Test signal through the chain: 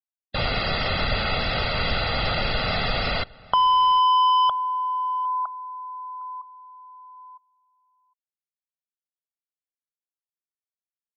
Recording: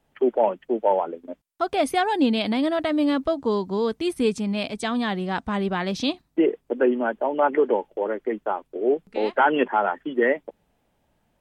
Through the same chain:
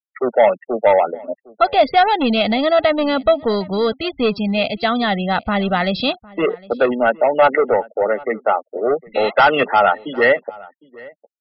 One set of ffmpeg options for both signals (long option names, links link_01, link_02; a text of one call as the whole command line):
ffmpeg -i in.wav -filter_complex "[0:a]aresample=11025,asoftclip=type=tanh:threshold=-16.5dB,aresample=44100,lowshelf=frequency=190:gain=-3.5,aecho=1:1:1.5:0.59,afftfilt=real='re*gte(hypot(re,im),0.0126)':imag='im*gte(hypot(re,im),0.0126)':win_size=1024:overlap=0.75,aemphasis=mode=production:type=75kf,asplit=2[link_01][link_02];[link_02]adelay=758,volume=-22dB,highshelf=frequency=4000:gain=-17.1[link_03];[link_01][link_03]amix=inputs=2:normalize=0,acrossover=split=2900[link_04][link_05];[link_05]acompressor=threshold=-39dB:ratio=4:attack=1:release=60[link_06];[link_04][link_06]amix=inputs=2:normalize=0,volume=8.5dB" out.wav